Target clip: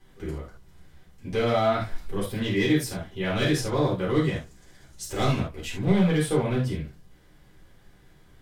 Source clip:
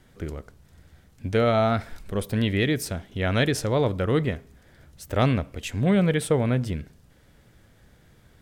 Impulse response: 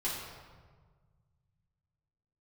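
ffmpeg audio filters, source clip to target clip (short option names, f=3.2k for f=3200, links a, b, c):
-filter_complex "[0:a]asettb=1/sr,asplit=3[a][b][c];[a]atrim=end=4.184[d];[b]atrim=start=4.18:end=5.4,asetpts=PTS-STARTPTS,afade=t=in:d=0.004:c=qsin,afade=t=out:st=1.216:d=0.004:c=qsin,equalizer=f=7k:w=0.93:g=12[e];[c]atrim=start=5.396[f];[d][e]acrossfade=d=0.004:c1=hsin:c2=qsin[g];[g][f]acrossfade=d=0.004:c1=qsin:c2=hsin,volume=16dB,asoftclip=hard,volume=-16dB[h];[1:a]atrim=start_sample=2205,atrim=end_sample=3969[i];[h][i]afir=irnorm=-1:irlink=0,volume=-3.5dB"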